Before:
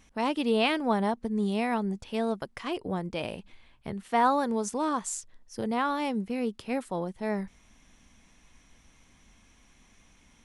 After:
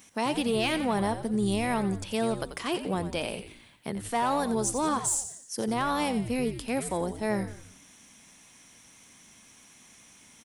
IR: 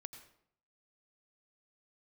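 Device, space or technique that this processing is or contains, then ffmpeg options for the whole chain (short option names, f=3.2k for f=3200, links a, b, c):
soft clipper into limiter: -filter_complex "[0:a]highpass=150,aemphasis=mode=production:type=50kf,equalizer=f=8.6k:t=o:w=0.36:g=3.5,asoftclip=type=tanh:threshold=-16.5dB,alimiter=limit=-23dB:level=0:latency=1:release=100,asplit=6[a][b][c][d][e][f];[b]adelay=88,afreqshift=-96,volume=-10.5dB[g];[c]adelay=176,afreqshift=-192,volume=-17.1dB[h];[d]adelay=264,afreqshift=-288,volume=-23.6dB[i];[e]adelay=352,afreqshift=-384,volume=-30.2dB[j];[f]adelay=440,afreqshift=-480,volume=-36.7dB[k];[a][g][h][i][j][k]amix=inputs=6:normalize=0,volume=3dB"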